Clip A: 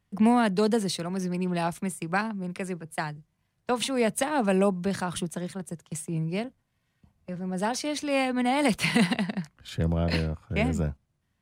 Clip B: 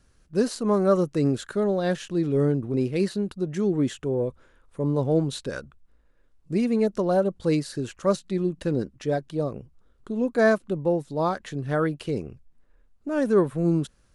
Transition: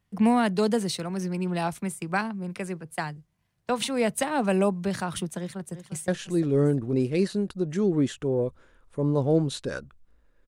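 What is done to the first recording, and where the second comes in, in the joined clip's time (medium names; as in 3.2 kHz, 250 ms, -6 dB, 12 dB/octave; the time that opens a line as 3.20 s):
clip A
5.38–6.08 s: echo throw 350 ms, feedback 45%, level -11 dB
6.08 s: go over to clip B from 1.89 s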